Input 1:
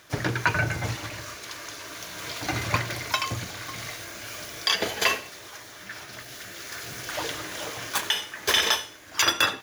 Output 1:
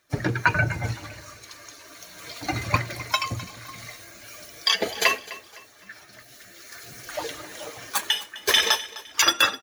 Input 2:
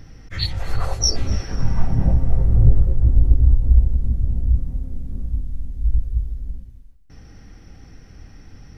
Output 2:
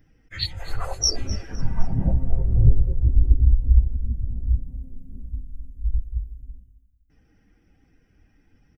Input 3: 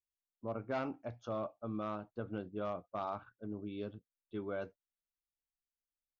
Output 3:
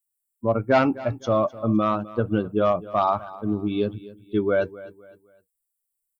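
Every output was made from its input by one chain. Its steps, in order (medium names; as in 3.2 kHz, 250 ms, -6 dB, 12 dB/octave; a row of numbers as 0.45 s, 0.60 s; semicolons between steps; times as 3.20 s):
expander on every frequency bin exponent 1.5; feedback delay 256 ms, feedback 35%, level -18 dB; normalise loudness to -24 LUFS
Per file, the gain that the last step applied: +4.5 dB, -0.5 dB, +20.5 dB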